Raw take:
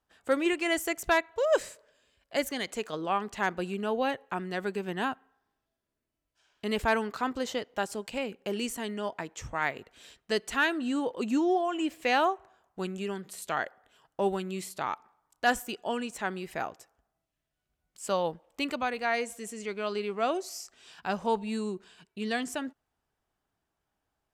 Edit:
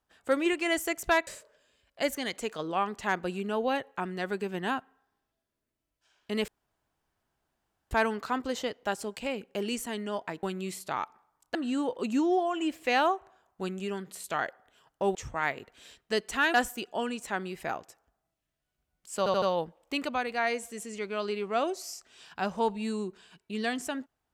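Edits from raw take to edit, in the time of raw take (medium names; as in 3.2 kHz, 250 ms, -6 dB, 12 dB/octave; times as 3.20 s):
1.27–1.61 s: delete
6.82 s: insert room tone 1.43 s
9.34–10.73 s: swap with 14.33–15.45 s
18.09 s: stutter 0.08 s, 4 plays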